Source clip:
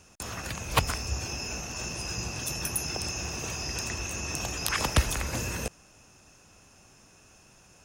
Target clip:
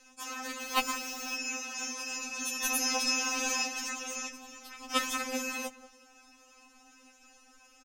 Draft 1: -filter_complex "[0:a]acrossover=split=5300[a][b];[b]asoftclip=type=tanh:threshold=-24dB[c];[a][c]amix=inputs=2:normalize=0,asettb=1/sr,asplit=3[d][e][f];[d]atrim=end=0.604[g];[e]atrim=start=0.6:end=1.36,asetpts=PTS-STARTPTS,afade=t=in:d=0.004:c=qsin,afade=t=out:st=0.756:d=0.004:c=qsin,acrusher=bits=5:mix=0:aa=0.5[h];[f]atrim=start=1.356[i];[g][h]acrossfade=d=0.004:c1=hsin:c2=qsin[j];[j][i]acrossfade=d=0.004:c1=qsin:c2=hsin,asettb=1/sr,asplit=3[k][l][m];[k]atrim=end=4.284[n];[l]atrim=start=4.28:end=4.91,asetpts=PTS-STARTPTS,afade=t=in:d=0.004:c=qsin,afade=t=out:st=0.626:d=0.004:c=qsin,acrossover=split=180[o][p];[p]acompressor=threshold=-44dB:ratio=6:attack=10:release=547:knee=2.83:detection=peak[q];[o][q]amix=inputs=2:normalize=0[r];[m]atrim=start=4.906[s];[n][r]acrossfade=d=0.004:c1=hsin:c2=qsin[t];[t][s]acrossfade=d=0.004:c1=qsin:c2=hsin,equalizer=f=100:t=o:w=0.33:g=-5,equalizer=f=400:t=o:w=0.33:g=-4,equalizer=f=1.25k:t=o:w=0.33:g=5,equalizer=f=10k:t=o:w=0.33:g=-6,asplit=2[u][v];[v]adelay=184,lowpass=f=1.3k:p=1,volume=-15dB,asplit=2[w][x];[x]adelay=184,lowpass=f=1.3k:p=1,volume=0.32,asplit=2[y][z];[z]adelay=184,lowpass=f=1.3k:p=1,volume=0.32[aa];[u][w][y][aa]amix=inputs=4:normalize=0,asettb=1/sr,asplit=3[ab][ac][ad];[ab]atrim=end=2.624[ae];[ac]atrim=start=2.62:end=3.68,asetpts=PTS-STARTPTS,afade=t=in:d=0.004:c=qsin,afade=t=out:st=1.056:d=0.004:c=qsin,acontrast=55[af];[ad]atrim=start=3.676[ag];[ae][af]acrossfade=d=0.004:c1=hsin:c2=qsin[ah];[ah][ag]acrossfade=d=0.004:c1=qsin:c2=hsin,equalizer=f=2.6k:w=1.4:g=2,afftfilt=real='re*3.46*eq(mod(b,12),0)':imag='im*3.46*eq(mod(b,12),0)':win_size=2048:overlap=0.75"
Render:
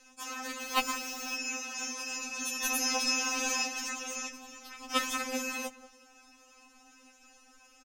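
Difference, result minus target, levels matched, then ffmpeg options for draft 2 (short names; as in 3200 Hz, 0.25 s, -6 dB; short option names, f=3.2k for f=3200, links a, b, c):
soft clip: distortion +8 dB
-filter_complex "[0:a]acrossover=split=5300[a][b];[b]asoftclip=type=tanh:threshold=-15.5dB[c];[a][c]amix=inputs=2:normalize=0,asettb=1/sr,asplit=3[d][e][f];[d]atrim=end=0.604[g];[e]atrim=start=0.6:end=1.36,asetpts=PTS-STARTPTS,afade=t=in:d=0.004:c=qsin,afade=t=out:st=0.756:d=0.004:c=qsin,acrusher=bits=5:mix=0:aa=0.5[h];[f]atrim=start=1.356[i];[g][h]acrossfade=d=0.004:c1=hsin:c2=qsin[j];[j][i]acrossfade=d=0.004:c1=qsin:c2=hsin,asettb=1/sr,asplit=3[k][l][m];[k]atrim=end=4.284[n];[l]atrim=start=4.28:end=4.91,asetpts=PTS-STARTPTS,afade=t=in:d=0.004:c=qsin,afade=t=out:st=0.626:d=0.004:c=qsin,acrossover=split=180[o][p];[p]acompressor=threshold=-44dB:ratio=6:attack=10:release=547:knee=2.83:detection=peak[q];[o][q]amix=inputs=2:normalize=0[r];[m]atrim=start=4.906[s];[n][r]acrossfade=d=0.004:c1=hsin:c2=qsin[t];[t][s]acrossfade=d=0.004:c1=qsin:c2=hsin,equalizer=f=100:t=o:w=0.33:g=-5,equalizer=f=400:t=o:w=0.33:g=-4,equalizer=f=1.25k:t=o:w=0.33:g=5,equalizer=f=10k:t=o:w=0.33:g=-6,asplit=2[u][v];[v]adelay=184,lowpass=f=1.3k:p=1,volume=-15dB,asplit=2[w][x];[x]adelay=184,lowpass=f=1.3k:p=1,volume=0.32,asplit=2[y][z];[z]adelay=184,lowpass=f=1.3k:p=1,volume=0.32[aa];[u][w][y][aa]amix=inputs=4:normalize=0,asettb=1/sr,asplit=3[ab][ac][ad];[ab]atrim=end=2.624[ae];[ac]atrim=start=2.62:end=3.68,asetpts=PTS-STARTPTS,afade=t=in:d=0.004:c=qsin,afade=t=out:st=1.056:d=0.004:c=qsin,acontrast=55[af];[ad]atrim=start=3.676[ag];[ae][af]acrossfade=d=0.004:c1=hsin:c2=qsin[ah];[ah][ag]acrossfade=d=0.004:c1=qsin:c2=hsin,equalizer=f=2.6k:w=1.4:g=2,afftfilt=real='re*3.46*eq(mod(b,12),0)':imag='im*3.46*eq(mod(b,12),0)':win_size=2048:overlap=0.75"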